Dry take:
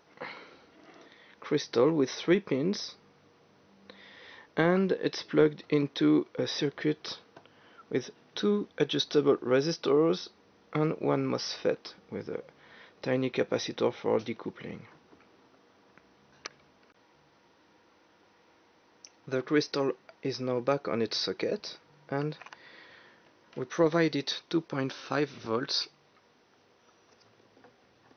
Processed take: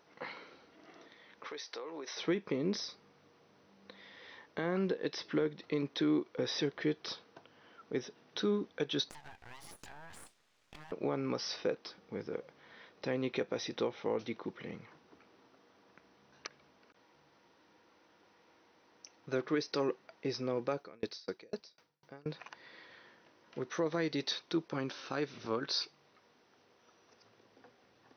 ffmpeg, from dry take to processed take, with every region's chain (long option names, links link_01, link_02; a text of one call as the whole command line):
ffmpeg -i in.wav -filter_complex "[0:a]asettb=1/sr,asplit=3[link_01][link_02][link_03];[link_01]atrim=end=1.474[link_04];[link_02]atrim=start=1.47:end=2.17,asetpts=PTS-STARTPTS,afade=type=in:duration=0.004:curve=qsin,afade=type=out:start_time=0.696:duration=0.004:curve=qsin,highpass=610,acompressor=threshold=-36dB:ratio=10:attack=3.2:release=140:knee=1:detection=peak[link_05];[link_03]atrim=start=2.166[link_06];[link_04][link_05]acrossfade=duration=0.004:curve1=hsin:curve2=qsin[link_07];[link_07][link_06]acrossfade=duration=0.004:curve1=qsin:curve2=hsin,asettb=1/sr,asplit=3[link_08][link_09][link_10];[link_08]atrim=end=9.104[link_11];[link_09]atrim=start=9.1:end=10.92,asetpts=PTS-STARTPTS,afade=type=in:duration=0.004:curve=qsin,afade=type=out:start_time=1.816:duration=0.004:curve=qsin,highpass=740,acompressor=threshold=-41dB:ratio=8:attack=3.2:release=140:knee=1:detection=peak,aeval=exprs='abs(val(0))':channel_layout=same[link_12];[link_10]atrim=start=10.916[link_13];[link_11][link_12]acrossfade=duration=0.004:curve1=hsin:curve2=qsin[link_14];[link_14][link_13]acrossfade=duration=0.004:curve1=qsin:curve2=hsin,asettb=1/sr,asplit=3[link_15][link_16][link_17];[link_15]atrim=end=20.784[link_18];[link_16]atrim=start=20.78:end=22.26,asetpts=PTS-STARTPTS,afade=type=in:duration=0.004:curve=qsin,afade=type=out:start_time=1.476:duration=0.004:curve=qsin,aemphasis=mode=production:type=50kf,aeval=exprs='val(0)*pow(10,-35*if(lt(mod(4*n/s,1),2*abs(4)/1000),1-mod(4*n/s,1)/(2*abs(4)/1000),(mod(4*n/s,1)-2*abs(4)/1000)/(1-2*abs(4)/1000))/20)':channel_layout=same[link_19];[link_17]atrim=start=22.256[link_20];[link_18][link_19]acrossfade=duration=0.004:curve1=hsin:curve2=qsin[link_21];[link_21][link_20]acrossfade=duration=0.004:curve1=qsin:curve2=hsin,lowshelf=frequency=91:gain=-6,alimiter=limit=-19.5dB:level=0:latency=1:release=198,volume=-3dB" out.wav